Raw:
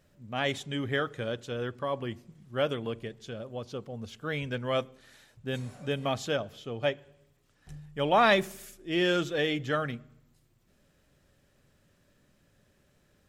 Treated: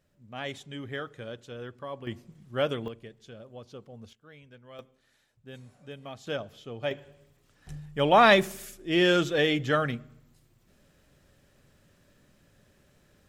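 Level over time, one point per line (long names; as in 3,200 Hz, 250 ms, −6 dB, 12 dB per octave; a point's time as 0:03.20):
−6.5 dB
from 0:02.07 +1 dB
from 0:02.88 −7 dB
from 0:04.13 −19 dB
from 0:04.79 −12 dB
from 0:06.27 −3 dB
from 0:06.91 +4 dB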